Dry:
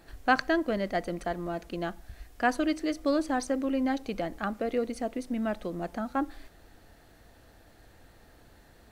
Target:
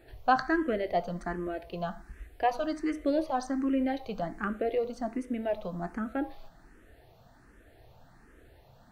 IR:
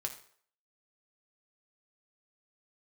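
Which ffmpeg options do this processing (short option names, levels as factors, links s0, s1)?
-filter_complex "[0:a]asplit=2[s0][s1];[s1]highshelf=f=3500:g=-7.5[s2];[1:a]atrim=start_sample=2205,lowpass=4700[s3];[s2][s3]afir=irnorm=-1:irlink=0,volume=1.26[s4];[s0][s4]amix=inputs=2:normalize=0,asplit=2[s5][s6];[s6]afreqshift=1.3[s7];[s5][s7]amix=inputs=2:normalize=1,volume=0.631"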